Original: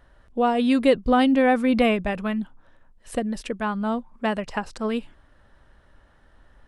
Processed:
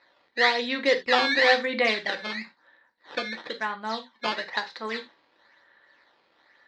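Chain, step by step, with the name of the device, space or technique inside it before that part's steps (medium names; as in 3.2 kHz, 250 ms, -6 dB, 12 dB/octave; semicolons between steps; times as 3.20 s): circuit-bent sampling toy (decimation with a swept rate 13×, swing 160% 1 Hz; cabinet simulation 530–4400 Hz, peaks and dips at 650 Hz -6 dB, 1.3 kHz -4 dB, 1.9 kHz +10 dB, 2.8 kHz -4 dB, 4 kHz +9 dB); gated-style reverb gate 110 ms falling, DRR 6 dB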